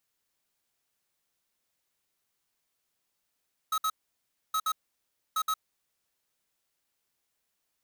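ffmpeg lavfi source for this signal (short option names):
-f lavfi -i "aevalsrc='0.0398*(2*lt(mod(1280*t,1),0.5)-1)*clip(min(mod(mod(t,0.82),0.12),0.06-mod(mod(t,0.82),0.12))/0.005,0,1)*lt(mod(t,0.82),0.24)':d=2.46:s=44100"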